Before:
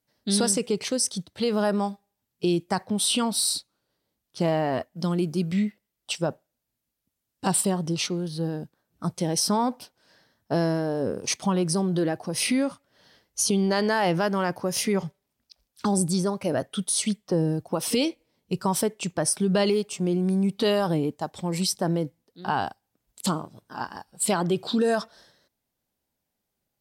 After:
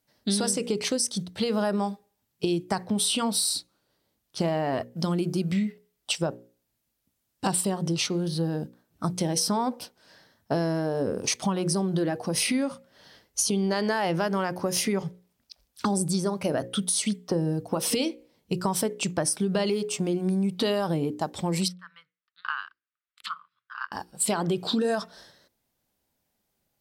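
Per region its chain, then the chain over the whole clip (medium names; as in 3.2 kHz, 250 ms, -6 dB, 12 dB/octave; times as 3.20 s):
21.68–23.92 s: elliptic high-pass 1.2 kHz + transient shaper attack +6 dB, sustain -8 dB + distance through air 420 m
whole clip: hum notches 60/120/180/240/300/360/420/480/540 Hz; compression 4:1, threshold -28 dBFS; trim +4.5 dB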